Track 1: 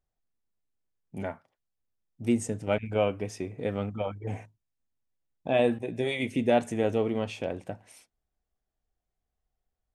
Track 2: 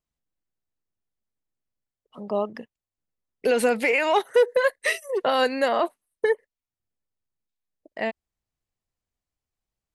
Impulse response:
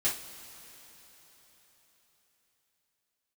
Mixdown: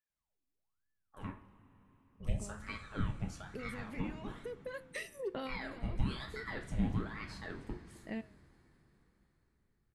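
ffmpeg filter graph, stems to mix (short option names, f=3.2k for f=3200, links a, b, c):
-filter_complex "[0:a]lowshelf=f=310:g=-10.5,acompressor=threshold=-30dB:ratio=6,aeval=exprs='val(0)*sin(2*PI*1000*n/s+1000*0.75/1.1*sin(2*PI*1.1*n/s))':c=same,volume=-6.5dB,asplit=3[a][b][c];[b]volume=-6dB[d];[1:a]acompressor=threshold=-28dB:ratio=4,adelay=100,volume=-6dB[e];[c]apad=whole_len=443000[f];[e][f]sidechaincompress=threshold=-51dB:ratio=8:attack=39:release=894[g];[2:a]atrim=start_sample=2205[h];[d][h]afir=irnorm=-1:irlink=0[i];[a][g][i]amix=inputs=3:normalize=0,flanger=delay=8.7:depth=7.1:regen=-86:speed=0.26:shape=sinusoidal,asubboost=boost=9:cutoff=230"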